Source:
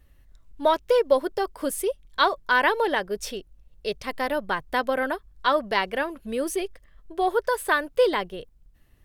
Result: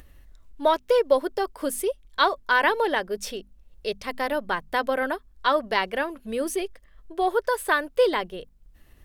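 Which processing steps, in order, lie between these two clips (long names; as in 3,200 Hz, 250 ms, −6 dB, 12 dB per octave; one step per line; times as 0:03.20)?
parametric band 120 Hz −6.5 dB 0.44 octaves
mains-hum notches 50/100/150/200/250 Hz
upward compression, threshold −42 dBFS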